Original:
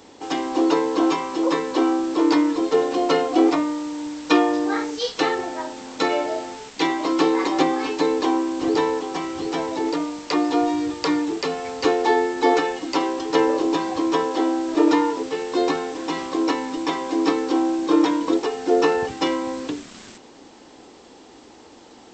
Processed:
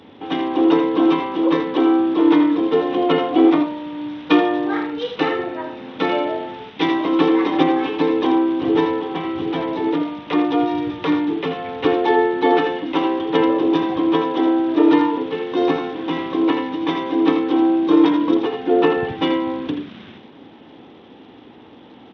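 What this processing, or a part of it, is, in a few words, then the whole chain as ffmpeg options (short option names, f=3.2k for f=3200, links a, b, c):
Bluetooth headset: -filter_complex "[0:a]bandreject=f=344.8:t=h:w=4,bandreject=f=689.6:t=h:w=4,bandreject=f=1.0344k:t=h:w=4,bandreject=f=1.3792k:t=h:w=4,bandreject=f=1.724k:t=h:w=4,bandreject=f=2.0688k:t=h:w=4,bandreject=f=2.4136k:t=h:w=4,bandreject=f=2.7584k:t=h:w=4,bandreject=f=3.1032k:t=h:w=4,bandreject=f=3.448k:t=h:w=4,bandreject=f=3.7928k:t=h:w=4,bandreject=f=4.1376k:t=h:w=4,bandreject=f=4.4824k:t=h:w=4,bandreject=f=4.8272k:t=h:w=4,bandreject=f=5.172k:t=h:w=4,bandreject=f=5.5168k:t=h:w=4,bandreject=f=5.8616k:t=h:w=4,bandreject=f=6.2064k:t=h:w=4,bandreject=f=6.5512k:t=h:w=4,asettb=1/sr,asplit=3[a][b][c];[a]atrim=end=4.834[d];[b]atrim=start=4.83:end=5.89,asetpts=PTS-STARTPTS,afade=t=in:d=0.004:c=qsin,afade=t=out:st=1.056:d=0.004:c=qsin,bandreject=f=3.3k:w=8.5[e];[c]atrim=start=5.886[f];[d][e]acrossfade=d=0.004:c1=hsin:c2=qsin[g];[g][f]acrossfade=d=0.004:c1=qsin:c2=hsin,highpass=120,bass=f=250:g=11,treble=f=4k:g=9,aecho=1:1:82:0.398,aresample=8000,aresample=44100" -ar 32000 -c:a sbc -b:a 64k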